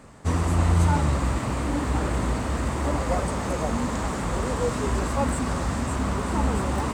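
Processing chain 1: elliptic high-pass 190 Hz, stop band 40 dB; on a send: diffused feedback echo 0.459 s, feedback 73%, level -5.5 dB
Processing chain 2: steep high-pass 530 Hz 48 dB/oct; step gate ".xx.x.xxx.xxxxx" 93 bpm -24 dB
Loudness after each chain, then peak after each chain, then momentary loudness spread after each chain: -27.0, -33.0 LUFS; -13.0, -15.5 dBFS; 3, 4 LU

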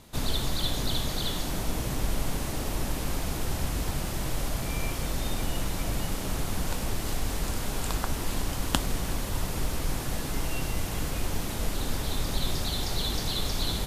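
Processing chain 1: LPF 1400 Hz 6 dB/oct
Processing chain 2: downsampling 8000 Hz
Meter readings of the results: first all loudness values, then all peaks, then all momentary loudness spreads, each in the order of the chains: -34.0, -33.0 LUFS; -9.0, -6.0 dBFS; 2, 2 LU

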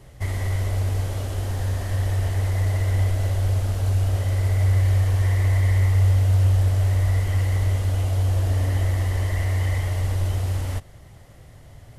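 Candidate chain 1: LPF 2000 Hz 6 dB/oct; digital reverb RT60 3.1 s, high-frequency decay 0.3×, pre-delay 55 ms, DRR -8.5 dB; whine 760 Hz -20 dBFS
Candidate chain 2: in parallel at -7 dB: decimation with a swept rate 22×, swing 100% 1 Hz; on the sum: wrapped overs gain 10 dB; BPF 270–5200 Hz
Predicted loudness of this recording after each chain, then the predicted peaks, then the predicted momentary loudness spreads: -16.0, -27.0 LUFS; -1.5, -4.0 dBFS; 8, 16 LU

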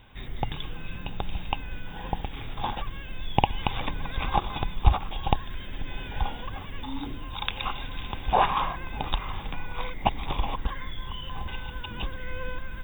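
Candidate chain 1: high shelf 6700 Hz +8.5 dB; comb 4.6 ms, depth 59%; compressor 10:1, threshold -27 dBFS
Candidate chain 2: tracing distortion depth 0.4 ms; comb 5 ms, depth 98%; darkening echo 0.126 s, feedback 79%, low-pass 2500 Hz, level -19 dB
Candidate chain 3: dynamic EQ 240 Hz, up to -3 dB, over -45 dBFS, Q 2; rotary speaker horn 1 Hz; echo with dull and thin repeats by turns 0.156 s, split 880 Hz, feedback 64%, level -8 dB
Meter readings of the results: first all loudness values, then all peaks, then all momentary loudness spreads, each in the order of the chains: -36.5, -28.5, -34.5 LUFS; -10.5, -1.0, -5.0 dBFS; 5, 12, 10 LU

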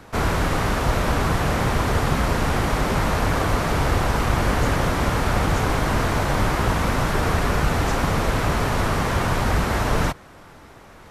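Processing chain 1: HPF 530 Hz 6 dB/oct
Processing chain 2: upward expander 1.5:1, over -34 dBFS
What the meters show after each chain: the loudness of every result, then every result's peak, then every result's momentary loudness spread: -25.5, -24.0 LUFS; -12.5, -7.5 dBFS; 1, 2 LU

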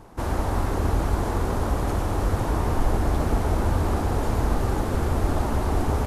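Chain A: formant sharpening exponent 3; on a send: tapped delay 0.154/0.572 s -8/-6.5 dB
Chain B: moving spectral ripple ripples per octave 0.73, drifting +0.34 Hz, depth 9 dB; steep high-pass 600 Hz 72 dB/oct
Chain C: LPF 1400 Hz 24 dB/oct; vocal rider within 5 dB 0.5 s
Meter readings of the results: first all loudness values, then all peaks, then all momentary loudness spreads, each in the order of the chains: -26.0, -31.5, -25.5 LUFS; -9.5, -18.5, -10.0 dBFS; 3, 2, 1 LU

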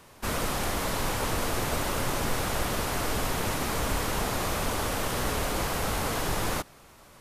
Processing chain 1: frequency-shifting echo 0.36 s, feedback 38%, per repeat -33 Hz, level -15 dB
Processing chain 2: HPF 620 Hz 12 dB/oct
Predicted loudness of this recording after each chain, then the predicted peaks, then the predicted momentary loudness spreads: -29.0, -31.0 LUFS; -14.0, -19.5 dBFS; 1, 0 LU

